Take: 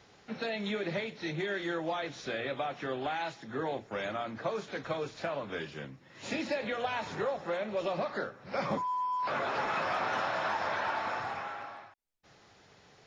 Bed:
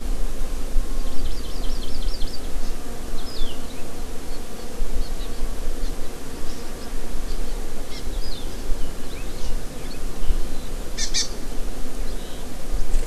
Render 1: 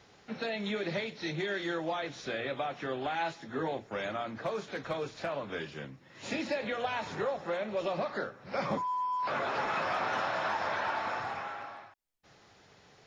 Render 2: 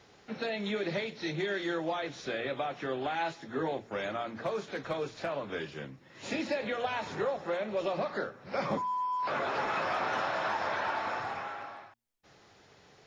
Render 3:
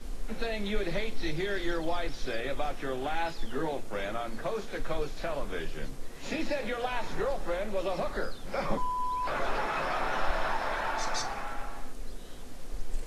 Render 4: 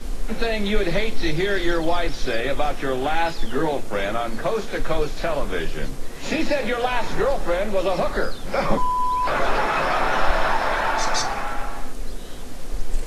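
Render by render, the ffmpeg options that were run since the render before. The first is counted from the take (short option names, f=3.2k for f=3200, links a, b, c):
-filter_complex "[0:a]asettb=1/sr,asplit=3[a][b][c];[a]atrim=end=0.764[d];[b]atrim=start=0.76:end=1.85,asetpts=PTS-STARTPTS,afade=t=in:d=0.004:c=qsin,afade=t=out:st=1.086:d=0.004:c=qsin,equalizer=f=4.8k:w=1.5:g=4.5[e];[c]atrim=start=1.846[f];[d][e]acrossfade=d=0.004:c1=hsin:c2=qsin[g];[g][f]acrossfade=d=0.004:c1=qsin:c2=hsin,asettb=1/sr,asplit=3[h][i][j];[h]atrim=end=3.134[k];[i]atrim=start=3.13:end=3.68,asetpts=PTS-STARTPTS,afade=t=in:d=0.004:c=qsin,afade=t=out:st=0.546:d=0.004:c=qsin,asplit=2[l][m];[m]adelay=12,volume=-6dB[n];[l][n]amix=inputs=2:normalize=0,atrim=end_sample=24255[o];[j]atrim=start=3.676[p];[k][o]acrossfade=d=0.004:c1=hsin:c2=qsin[q];[q][p]acrossfade=d=0.004:c1=qsin:c2=hsin,asettb=1/sr,asplit=3[r][s][t];[r]atrim=end=4.354[u];[s]atrim=start=4.35:end=5.39,asetpts=PTS-STARTPTS,afade=t=in:d=0.004:c=qsin,afade=t=out:st=1.036:d=0.004:c=qsin,volume=27dB,asoftclip=hard,volume=-27dB[v];[t]atrim=start=5.386[w];[u][v]acrossfade=d=0.004:c1=hsin:c2=qsin[x];[x][w]acrossfade=d=0.004:c1=qsin:c2=hsin"
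-af "equalizer=f=380:w=1.5:g=2,bandreject=f=58.26:t=h:w=4,bandreject=f=116.52:t=h:w=4,bandreject=f=174.78:t=h:w=4,bandreject=f=233.04:t=h:w=4"
-filter_complex "[1:a]volume=-13.5dB[a];[0:a][a]amix=inputs=2:normalize=0"
-af "volume=10dB"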